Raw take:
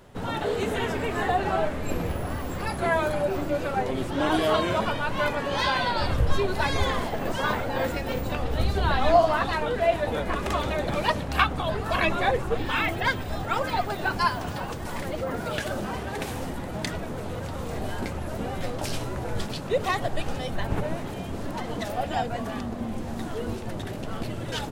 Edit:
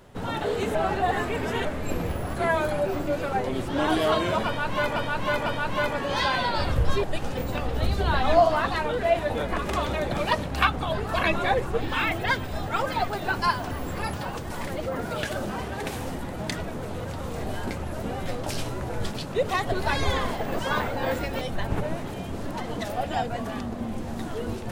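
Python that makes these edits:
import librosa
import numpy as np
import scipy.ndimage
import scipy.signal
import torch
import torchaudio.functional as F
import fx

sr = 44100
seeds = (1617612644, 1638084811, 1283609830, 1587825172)

y = fx.edit(x, sr, fx.reverse_span(start_s=0.75, length_s=0.9),
    fx.move(start_s=2.34, length_s=0.42, to_s=14.48),
    fx.repeat(start_s=4.88, length_s=0.5, count=3),
    fx.swap(start_s=6.45, length_s=1.69, other_s=20.07, other_length_s=0.34), tone=tone)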